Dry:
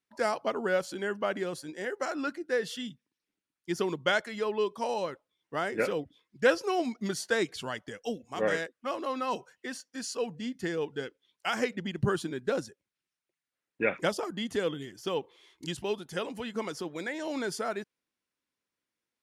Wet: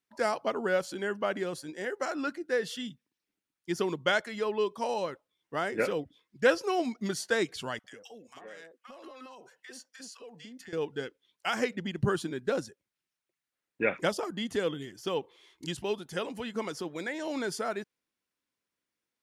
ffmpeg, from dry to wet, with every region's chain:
ffmpeg -i in.wav -filter_complex "[0:a]asettb=1/sr,asplit=3[link_01][link_02][link_03];[link_01]atrim=end=7.794[link_04];[link_02]atrim=start=7.79:end=10.73,asetpts=PTS-STARTPTS,afade=type=in:duration=0.004:curve=qsin,afade=type=out:start_time=2.936:duration=0.004:curve=qsin,highpass=frequency=450:poles=1,acompressor=threshold=-42dB:ratio=16:attack=3.2:release=140:knee=1:detection=peak,acrossover=split=1000[link_05][link_06];[link_05]adelay=50[link_07];[link_07][link_06]amix=inputs=2:normalize=0,atrim=end_sample=129654[link_08];[link_03]atrim=start=10.726[link_09];[link_04][link_08]acrossfade=duration=0.004:curve1=hsin:curve2=qsin[link_10];[link_10][link_09]acrossfade=duration=0.004:curve1=qsin:curve2=hsin" out.wav

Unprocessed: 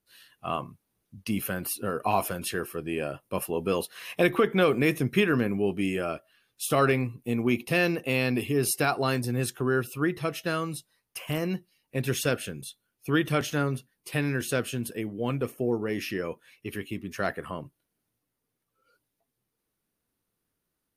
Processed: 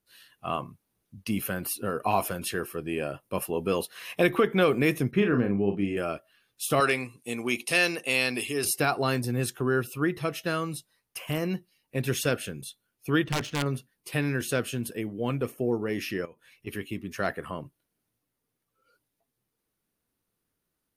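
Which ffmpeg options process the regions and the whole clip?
ffmpeg -i in.wav -filter_complex "[0:a]asettb=1/sr,asplit=3[link_01][link_02][link_03];[link_01]atrim=end=5.114[link_04];[link_02]atrim=start=5.11:end=5.97,asetpts=PTS-STARTPTS,afade=type=in:duration=0.004:curve=qsin,afade=type=out:start_time=0.856:duration=0.004:curve=qsin,lowpass=frequency=1300:poles=1,asplit=2[link_05][link_06];[link_06]adelay=40,volume=-6.5dB[link_07];[link_05][link_07]amix=inputs=2:normalize=0,atrim=end_sample=37926[link_08];[link_03]atrim=start=5.966[link_09];[link_04][link_08]acrossfade=duration=0.004:curve1=hsin:curve2=qsin[link_10];[link_10][link_09]acrossfade=duration=0.004:curve1=qsin:curve2=hsin,asettb=1/sr,asplit=3[link_11][link_12][link_13];[link_11]atrim=end=6.804[link_14];[link_12]atrim=start=6.8:end=8.65,asetpts=PTS-STARTPTS,afade=type=in:duration=0.004:curve=qsin,afade=type=out:start_time=1.846:duration=0.004:curve=qsin,lowpass=frequency=9200:width=0.5412,lowpass=frequency=9200:width=1.3066,aemphasis=mode=production:type=riaa[link_15];[link_13]atrim=start=8.646[link_16];[link_14][link_15]acrossfade=duration=0.004:curve1=hsin:curve2=qsin[link_17];[link_17][link_16]acrossfade=duration=0.004:curve1=qsin:curve2=hsin,asettb=1/sr,asplit=3[link_18][link_19][link_20];[link_18]atrim=end=13.244[link_21];[link_19]atrim=start=13.24:end=13.66,asetpts=PTS-STARTPTS,afade=type=in:duration=0.004:curve=qsin,afade=type=out:start_time=0.416:duration=0.004:curve=qsin,equalizer=frequency=860:width=0.4:gain=-4,aeval=exprs='(mod(9.44*val(0)+1,2)-1)/9.44':channel_layout=same,adynamicsmooth=sensitivity=7:basefreq=2600[link_22];[link_20]atrim=start=13.656[link_23];[link_21][link_22]acrossfade=duration=0.004:curve1=hsin:curve2=qsin[link_24];[link_24][link_23]acrossfade=duration=0.004:curve1=qsin:curve2=hsin,asettb=1/sr,asplit=3[link_25][link_26][link_27];[link_25]atrim=end=16.254[link_28];[link_26]atrim=start=16.25:end=16.67,asetpts=PTS-STARTPTS,afade=type=in:duration=0.004:curve=qsin,afade=type=out:start_time=0.416:duration=0.004:curve=qsin,asubboost=boost=10:cutoff=190,acompressor=threshold=-52dB:ratio=2.5:attack=3.2:release=140:knee=1:detection=peak[link_29];[link_27]atrim=start=16.666[link_30];[link_28][link_29]acrossfade=duration=0.004:curve1=hsin:curve2=qsin[link_31];[link_31][link_30]acrossfade=duration=0.004:curve1=qsin:curve2=hsin" out.wav

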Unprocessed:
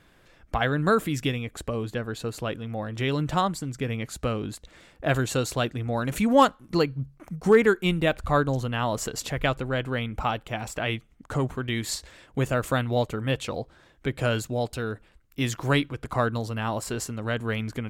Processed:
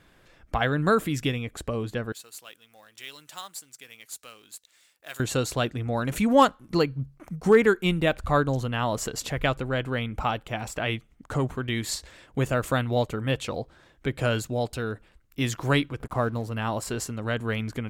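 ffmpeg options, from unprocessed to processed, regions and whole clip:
ffmpeg -i in.wav -filter_complex "[0:a]asettb=1/sr,asplit=3[link_01][link_02][link_03];[link_01]atrim=end=2.124[link_04];[link_02]atrim=start=2.12:end=5.2,asetpts=PTS-STARTPTS,afade=type=in:duration=0.004:curve=qsin,afade=type=out:start_time=3.076:duration=0.004:curve=qsin,aderivative,acrusher=bits=3:mode=log:mix=0:aa=0.000001[link_05];[link_03]atrim=start=5.196[link_06];[link_04][link_05]acrossfade=duration=0.004:curve1=hsin:curve2=qsin[link_07];[link_07][link_06]acrossfade=duration=0.004:curve1=qsin:curve2=hsin,asettb=1/sr,asplit=3[link_08][link_09][link_10];[link_08]atrim=end=16.004[link_11];[link_09]atrim=start=16:end=16.52,asetpts=PTS-STARTPTS,afade=type=in:duration=0.004:curve=qsin,afade=type=out:start_time=0.516:duration=0.004:curve=qsin,equalizer=frequency=3800:width=0.58:gain=-9.5,acompressor=mode=upward:threshold=-31dB:ratio=2.5:attack=3.2:release=140:knee=2.83:detection=peak,aeval=exprs='sgn(val(0))*max(abs(val(0))-0.00299,0)':channel_layout=same[link_12];[link_10]atrim=start=16.516[link_13];[link_11][link_12]acrossfade=duration=0.004:curve1=hsin:curve2=qsin[link_14];[link_14][link_13]acrossfade=duration=0.004:curve1=qsin:curve2=hsin" out.wav

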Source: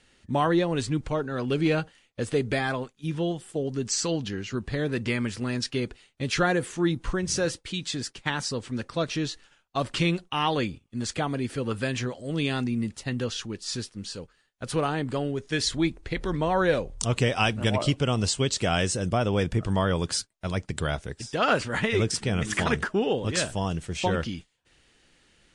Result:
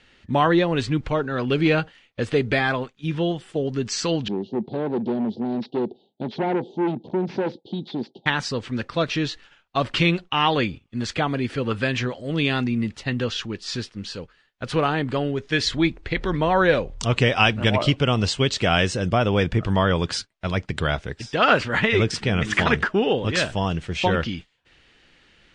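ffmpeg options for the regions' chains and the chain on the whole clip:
ffmpeg -i in.wav -filter_complex "[0:a]asettb=1/sr,asplit=3[link_01][link_02][link_03];[link_01]atrim=end=4.284[link_04];[link_02]atrim=start=4.28:end=8.26,asetpts=PTS-STARTPTS,afade=type=in:duration=0.004:curve=qsin,afade=type=out:start_time=3.976:duration=0.004:curve=qsin,asuperstop=centerf=1700:order=12:qfactor=0.6,asoftclip=type=hard:threshold=-29dB,highpass=frequency=150:width=0.5412,highpass=frequency=150:width=1.3066,equalizer=frequency=220:width_type=q:width=4:gain=7,equalizer=frequency=370:width_type=q:width=4:gain=7,equalizer=frequency=850:width_type=q:width=4:gain=8,equalizer=frequency=1200:width_type=q:width=4:gain=-6,lowpass=frequency=3100:width=0.5412,lowpass=frequency=3100:width=1.3066[link_05];[link_03]atrim=start=8.256[link_06];[link_04][link_05]acrossfade=duration=0.004:curve1=hsin:curve2=qsin[link_07];[link_07][link_06]acrossfade=duration=0.004:curve1=qsin:curve2=hsin,lowpass=2900,highshelf=frequency=2200:gain=9.5,volume=4dB" out.wav

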